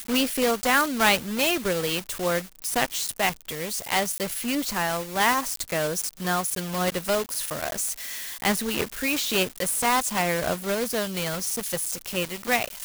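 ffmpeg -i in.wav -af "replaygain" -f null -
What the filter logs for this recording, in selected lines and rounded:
track_gain = +4.7 dB
track_peak = 0.298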